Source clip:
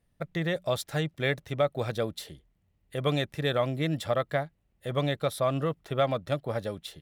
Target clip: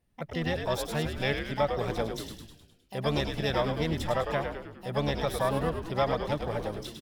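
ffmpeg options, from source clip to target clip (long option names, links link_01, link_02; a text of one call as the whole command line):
ffmpeg -i in.wav -filter_complex "[0:a]asplit=8[link_01][link_02][link_03][link_04][link_05][link_06][link_07][link_08];[link_02]adelay=103,afreqshift=-83,volume=-6dB[link_09];[link_03]adelay=206,afreqshift=-166,volume=-11dB[link_10];[link_04]adelay=309,afreqshift=-249,volume=-16.1dB[link_11];[link_05]adelay=412,afreqshift=-332,volume=-21.1dB[link_12];[link_06]adelay=515,afreqshift=-415,volume=-26.1dB[link_13];[link_07]adelay=618,afreqshift=-498,volume=-31.2dB[link_14];[link_08]adelay=721,afreqshift=-581,volume=-36.2dB[link_15];[link_01][link_09][link_10][link_11][link_12][link_13][link_14][link_15]amix=inputs=8:normalize=0,asplit=2[link_16][link_17];[link_17]asetrate=66075,aresample=44100,atempo=0.66742,volume=-7dB[link_18];[link_16][link_18]amix=inputs=2:normalize=0,volume=-2.5dB" out.wav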